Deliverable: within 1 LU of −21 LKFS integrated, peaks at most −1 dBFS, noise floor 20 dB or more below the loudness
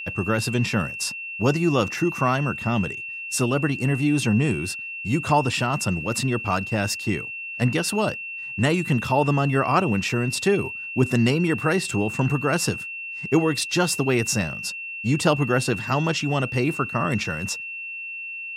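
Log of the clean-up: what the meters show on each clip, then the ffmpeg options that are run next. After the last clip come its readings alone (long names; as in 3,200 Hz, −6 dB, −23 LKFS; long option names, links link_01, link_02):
interfering tone 2,700 Hz; level of the tone −31 dBFS; integrated loudness −23.5 LKFS; sample peak −6.0 dBFS; target loudness −21.0 LKFS
→ -af "bandreject=frequency=2700:width=30"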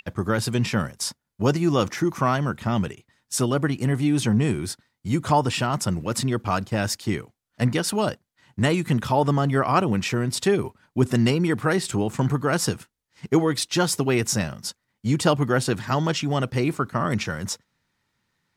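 interfering tone none found; integrated loudness −23.5 LKFS; sample peak −6.0 dBFS; target loudness −21.0 LKFS
→ -af "volume=2.5dB"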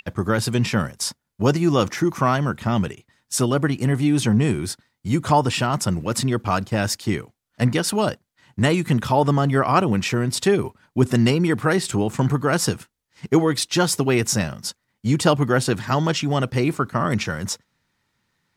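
integrated loudness −21.0 LKFS; sample peak −3.5 dBFS; background noise floor −76 dBFS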